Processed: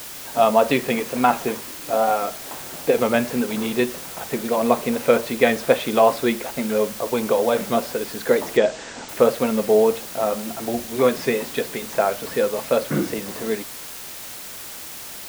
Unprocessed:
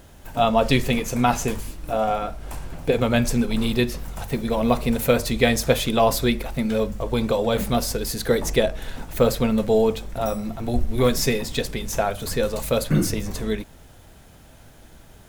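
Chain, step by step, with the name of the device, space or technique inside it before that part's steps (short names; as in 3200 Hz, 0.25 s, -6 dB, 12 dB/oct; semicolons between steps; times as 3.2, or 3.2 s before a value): wax cylinder (BPF 280–2300 Hz; wow and flutter; white noise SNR 14 dB); 8.57–9.09 steep low-pass 8100 Hz 72 dB/oct; gain +3.5 dB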